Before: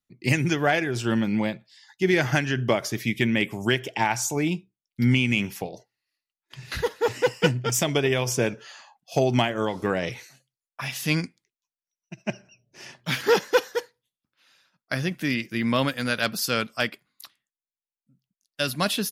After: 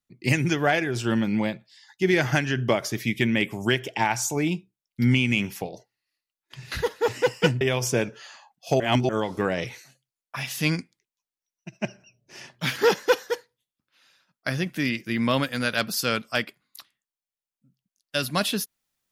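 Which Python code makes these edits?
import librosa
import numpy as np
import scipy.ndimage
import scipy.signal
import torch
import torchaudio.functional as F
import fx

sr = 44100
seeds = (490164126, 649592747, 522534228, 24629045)

y = fx.edit(x, sr, fx.cut(start_s=7.61, length_s=0.45),
    fx.reverse_span(start_s=9.25, length_s=0.29), tone=tone)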